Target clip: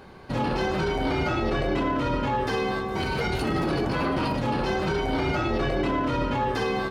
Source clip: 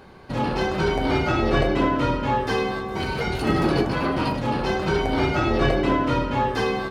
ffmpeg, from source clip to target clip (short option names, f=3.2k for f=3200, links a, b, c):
-af "alimiter=limit=-17.5dB:level=0:latency=1:release=21"